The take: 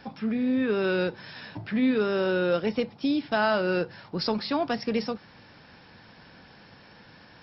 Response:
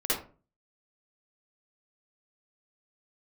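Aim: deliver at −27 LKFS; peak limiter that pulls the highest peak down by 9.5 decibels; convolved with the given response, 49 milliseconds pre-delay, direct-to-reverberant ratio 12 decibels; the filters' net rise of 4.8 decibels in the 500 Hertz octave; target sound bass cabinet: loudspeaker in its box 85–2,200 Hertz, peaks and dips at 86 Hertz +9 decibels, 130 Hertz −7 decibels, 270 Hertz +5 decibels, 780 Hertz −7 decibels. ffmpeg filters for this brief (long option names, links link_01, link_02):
-filter_complex "[0:a]equalizer=frequency=500:width_type=o:gain=6.5,alimiter=limit=-19.5dB:level=0:latency=1,asplit=2[link_01][link_02];[1:a]atrim=start_sample=2205,adelay=49[link_03];[link_02][link_03]afir=irnorm=-1:irlink=0,volume=-21dB[link_04];[link_01][link_04]amix=inputs=2:normalize=0,highpass=frequency=85:width=0.5412,highpass=frequency=85:width=1.3066,equalizer=frequency=86:width_type=q:width=4:gain=9,equalizer=frequency=130:width_type=q:width=4:gain=-7,equalizer=frequency=270:width_type=q:width=4:gain=5,equalizer=frequency=780:width_type=q:width=4:gain=-7,lowpass=frequency=2200:width=0.5412,lowpass=frequency=2200:width=1.3066,volume=-0.5dB"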